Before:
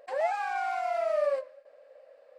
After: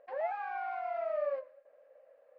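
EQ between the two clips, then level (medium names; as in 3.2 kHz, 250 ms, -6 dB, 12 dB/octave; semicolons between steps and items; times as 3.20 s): low-pass 2.3 kHz 12 dB/octave; distance through air 56 m; -6.0 dB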